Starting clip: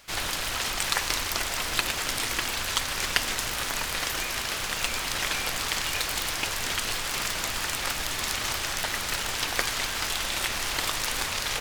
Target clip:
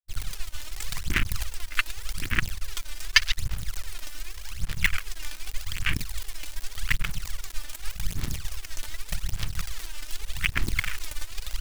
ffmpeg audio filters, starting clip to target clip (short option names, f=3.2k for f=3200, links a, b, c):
-af "bandreject=f=63.43:t=h:w=4,bandreject=f=126.86:t=h:w=4,bandreject=f=190.29:t=h:w=4,bandreject=f=253.72:t=h:w=4,bandreject=f=317.15:t=h:w=4,bandreject=f=380.58:t=h:w=4,bandreject=f=444.01:t=h:w=4,bandreject=f=507.44:t=h:w=4,bandreject=f=570.87:t=h:w=4,bandreject=f=634.3:t=h:w=4,bandreject=f=697.73:t=h:w=4,bandreject=f=761.16:t=h:w=4,bandreject=f=824.59:t=h:w=4,bandreject=f=888.02:t=h:w=4,bandreject=f=951.45:t=h:w=4,bandreject=f=1.01488k:t=h:w=4,bandreject=f=1.07831k:t=h:w=4,bandreject=f=1.14174k:t=h:w=4,aeval=exprs='sgn(val(0))*max(abs(val(0))-0.00531,0)':c=same,equalizer=f=540:t=o:w=2.1:g=-12,aphaser=in_gain=1:out_gain=1:delay=3.4:decay=0.75:speed=0.85:type=sinusoidal,acrusher=bits=4:dc=4:mix=0:aa=0.000001,afwtdn=0.0355,volume=6.5dB"